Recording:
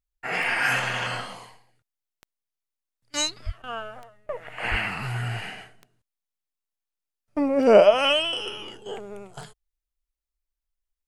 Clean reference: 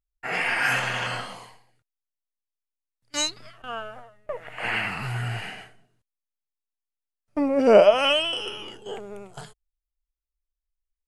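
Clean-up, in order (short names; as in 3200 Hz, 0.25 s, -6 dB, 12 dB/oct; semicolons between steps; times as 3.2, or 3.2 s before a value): de-click; 3.45–3.57 HPF 140 Hz 24 dB/oct; 4.7–4.82 HPF 140 Hz 24 dB/oct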